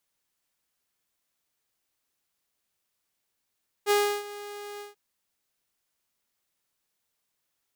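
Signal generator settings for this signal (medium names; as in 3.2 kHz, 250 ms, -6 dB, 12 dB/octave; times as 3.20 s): ADSR saw 411 Hz, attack 47 ms, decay 320 ms, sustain -18.5 dB, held 0.94 s, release 148 ms -16.5 dBFS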